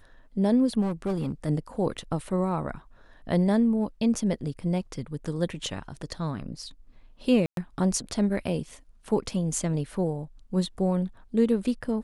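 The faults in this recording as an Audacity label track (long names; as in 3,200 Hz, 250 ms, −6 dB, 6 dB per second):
0.810000	1.320000	clipping −23.5 dBFS
7.460000	7.570000	drop-out 112 ms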